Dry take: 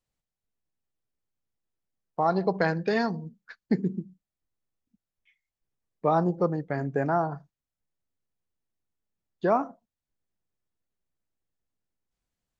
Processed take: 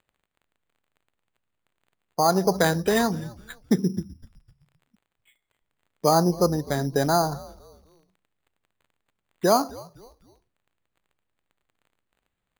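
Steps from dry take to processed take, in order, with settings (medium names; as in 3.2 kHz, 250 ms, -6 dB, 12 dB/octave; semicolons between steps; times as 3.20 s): crackle 97 per s -59 dBFS; sample-and-hold 8×; frequency-shifting echo 255 ms, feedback 36%, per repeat -110 Hz, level -21 dB; trim +4 dB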